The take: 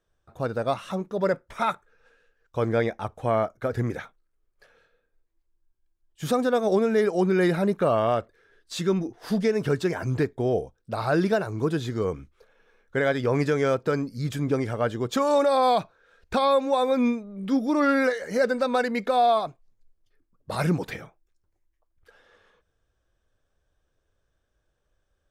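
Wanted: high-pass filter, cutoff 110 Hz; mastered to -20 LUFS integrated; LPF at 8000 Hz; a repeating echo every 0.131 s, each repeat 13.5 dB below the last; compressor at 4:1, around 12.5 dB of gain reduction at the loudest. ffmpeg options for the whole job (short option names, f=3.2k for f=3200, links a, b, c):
-af "highpass=110,lowpass=8k,acompressor=threshold=-33dB:ratio=4,aecho=1:1:131|262:0.211|0.0444,volume=15.5dB"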